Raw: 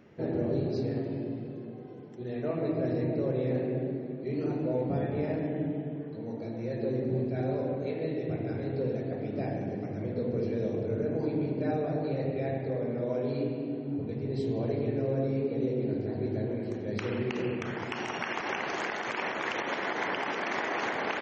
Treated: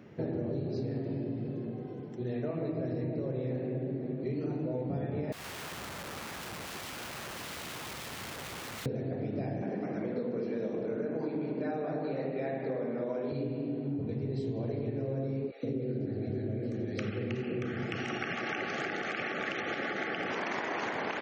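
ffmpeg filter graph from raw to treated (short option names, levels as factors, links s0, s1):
-filter_complex "[0:a]asettb=1/sr,asplit=3[s0][s1][s2];[s0]atrim=end=5.324[s3];[s1]atrim=start=5.32:end=8.86,asetpts=PTS-STARTPTS,afade=t=in:d=0.004:c=qsin,afade=t=out:st=3.536:d=0.004:c=qsin,equalizer=f=65:w=4.4:g=5.5,acompressor=threshold=0.0224:ratio=3:attack=3.2:release=140:knee=1:detection=peak,aeval=exprs='(mod(94.4*val(0)+1,2)-1)/94.4':c=same[s4];[s2]atrim=start=8.856[s5];[s3][s4]acrossfade=d=0.004:c1=hsin:c2=qsin[s6];[s6][s5]acrossfade=d=0.004:c1=qsin:c2=hsin,asettb=1/sr,asplit=3[s7][s8][s9];[s7]atrim=end=9.624[s10];[s8]atrim=start=9.62:end=13.32,asetpts=PTS-STARTPTS,afade=t=in:d=0.004:c=qsin,afade=t=out:st=3.696:d=0.004:c=qsin,highpass=f=170:w=0.5412,highpass=f=170:w=1.3066,equalizer=f=1300:t=o:w=1.6:g=7[s11];[s9]atrim=start=13.316[s12];[s10][s11]acrossfade=d=0.004:c1=hsin:c2=qsin[s13];[s13][s12]acrossfade=d=0.004:c1=qsin:c2=hsin,asettb=1/sr,asplit=3[s14][s15][s16];[s14]atrim=end=15.514[s17];[s15]atrim=start=15.51:end=20.31,asetpts=PTS-STARTPTS,afade=t=in:d=0.004:c=qsin,afade=t=out:st=4.796:d=0.004:c=qsin,asuperstop=centerf=980:order=20:qfactor=4.2,acrossover=split=740[s18][s19];[s18]adelay=120[s20];[s20][s19]amix=inputs=2:normalize=0,atrim=end_sample=211680,adynamicequalizer=threshold=0.00282:dfrequency=4600:dqfactor=0.7:tfrequency=4600:tqfactor=0.7:attack=5:release=100:ratio=0.375:range=3:mode=cutabove:tftype=highshelf[s21];[s16]atrim=start=20.306[s22];[s17][s21]acrossfade=d=0.004:c1=hsin:c2=qsin[s23];[s23][s22]acrossfade=d=0.004:c1=qsin:c2=hsin,highpass=100,lowshelf=f=140:g=9.5,acompressor=threshold=0.0224:ratio=6,volume=1.26"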